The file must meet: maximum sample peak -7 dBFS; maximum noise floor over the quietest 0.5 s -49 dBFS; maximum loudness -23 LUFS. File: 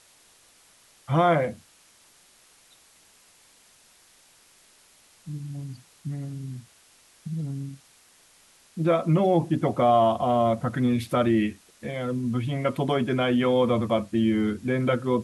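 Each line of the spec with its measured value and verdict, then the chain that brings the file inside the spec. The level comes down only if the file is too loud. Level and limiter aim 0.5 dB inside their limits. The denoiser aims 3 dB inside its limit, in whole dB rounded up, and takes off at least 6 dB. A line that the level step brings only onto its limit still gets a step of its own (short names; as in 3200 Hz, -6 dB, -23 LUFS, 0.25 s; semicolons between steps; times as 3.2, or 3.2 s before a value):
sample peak -10.0 dBFS: OK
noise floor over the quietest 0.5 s -58 dBFS: OK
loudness -24.5 LUFS: OK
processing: none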